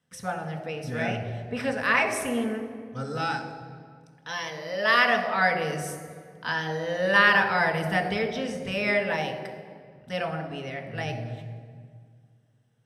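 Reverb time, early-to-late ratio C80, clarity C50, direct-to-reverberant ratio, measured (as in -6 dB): 2.0 s, 9.5 dB, 8.0 dB, 3.5 dB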